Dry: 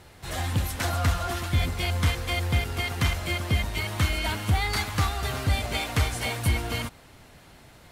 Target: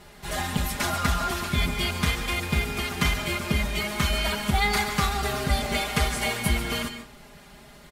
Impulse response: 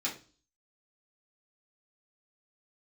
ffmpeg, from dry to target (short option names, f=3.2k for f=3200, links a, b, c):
-filter_complex "[0:a]aecho=1:1:4.9:0.96,asplit=2[a][b];[1:a]atrim=start_sample=2205,adelay=136[c];[b][c]afir=irnorm=-1:irlink=0,volume=-14.5dB[d];[a][d]amix=inputs=2:normalize=0"